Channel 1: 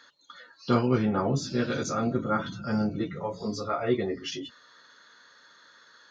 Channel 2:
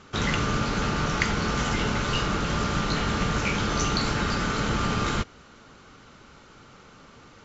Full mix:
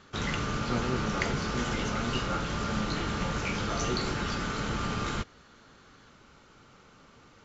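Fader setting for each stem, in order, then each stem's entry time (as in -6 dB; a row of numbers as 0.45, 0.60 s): -9.0, -6.0 dB; 0.00, 0.00 s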